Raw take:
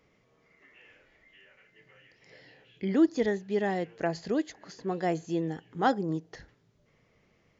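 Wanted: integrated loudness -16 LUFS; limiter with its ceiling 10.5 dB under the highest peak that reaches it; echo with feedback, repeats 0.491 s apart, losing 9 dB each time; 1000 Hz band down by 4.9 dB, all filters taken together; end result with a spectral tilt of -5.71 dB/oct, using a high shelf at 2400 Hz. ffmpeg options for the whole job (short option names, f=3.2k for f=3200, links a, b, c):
-af "equalizer=f=1k:t=o:g=-8.5,highshelf=f=2.4k:g=5.5,alimiter=level_in=0.5dB:limit=-24dB:level=0:latency=1,volume=-0.5dB,aecho=1:1:491|982|1473|1964:0.355|0.124|0.0435|0.0152,volume=19dB"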